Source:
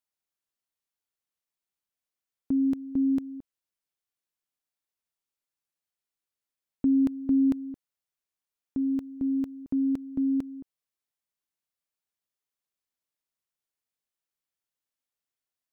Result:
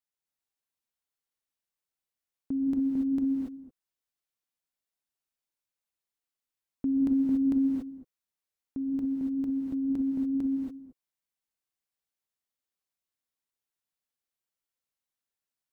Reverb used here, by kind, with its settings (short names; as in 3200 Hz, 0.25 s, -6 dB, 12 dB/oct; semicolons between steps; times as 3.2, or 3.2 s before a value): non-linear reverb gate 0.31 s rising, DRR -1 dB; gain -5 dB